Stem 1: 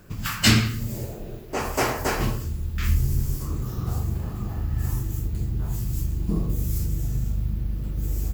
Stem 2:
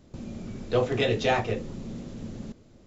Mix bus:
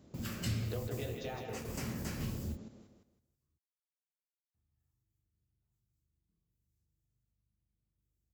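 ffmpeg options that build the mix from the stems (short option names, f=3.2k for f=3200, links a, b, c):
-filter_complex "[0:a]acrossover=split=120|250|1700|7900[a][b][c][d][e];[a]acompressor=threshold=-25dB:ratio=4[f];[b]acompressor=threshold=-41dB:ratio=4[g];[c]acompressor=threshold=-48dB:ratio=4[h];[d]acompressor=threshold=-37dB:ratio=4[i];[e]acompressor=threshold=-44dB:ratio=4[j];[f][g][h][i][j]amix=inputs=5:normalize=0,volume=-7.5dB,asplit=3[k][l][m];[k]atrim=end=3.58,asetpts=PTS-STARTPTS,afade=t=out:st=3.576:d=0.004:c=hsin[n];[l]atrim=start=3.58:end=4.54,asetpts=PTS-STARTPTS,volume=0[o];[m]atrim=start=4.54,asetpts=PTS-STARTPTS,afade=t=in:d=0.004:c=hsin[p];[n][o][p]concat=n=3:v=0:a=1[q];[1:a]acompressor=threshold=-34dB:ratio=20,volume=-4dB,asplit=3[r][s][t];[s]volume=-5dB[u];[t]apad=whole_len=367431[v];[q][v]sidechaingate=range=-43dB:threshold=-45dB:ratio=16:detection=peak[w];[u]aecho=0:1:161|322|483|644:1|0.27|0.0729|0.0197[x];[w][r][x]amix=inputs=3:normalize=0,highpass=69,equalizer=f=2.6k:w=0.52:g=-3"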